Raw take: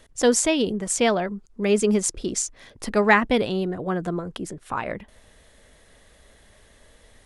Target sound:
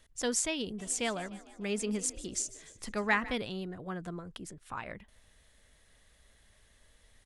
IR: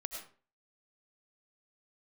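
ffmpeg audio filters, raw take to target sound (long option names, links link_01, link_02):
-filter_complex "[0:a]equalizer=frequency=440:width=0.47:gain=-7.5,asplit=3[link_01][link_02][link_03];[link_01]afade=type=out:start_time=0.78:duration=0.02[link_04];[link_02]asplit=6[link_05][link_06][link_07][link_08][link_09][link_10];[link_06]adelay=150,afreqshift=45,volume=-17.5dB[link_11];[link_07]adelay=300,afreqshift=90,volume=-22.2dB[link_12];[link_08]adelay=450,afreqshift=135,volume=-27dB[link_13];[link_09]adelay=600,afreqshift=180,volume=-31.7dB[link_14];[link_10]adelay=750,afreqshift=225,volume=-36.4dB[link_15];[link_05][link_11][link_12][link_13][link_14][link_15]amix=inputs=6:normalize=0,afade=type=in:start_time=0.78:duration=0.02,afade=type=out:start_time=3.33:duration=0.02[link_16];[link_03]afade=type=in:start_time=3.33:duration=0.02[link_17];[link_04][link_16][link_17]amix=inputs=3:normalize=0,volume=-8dB"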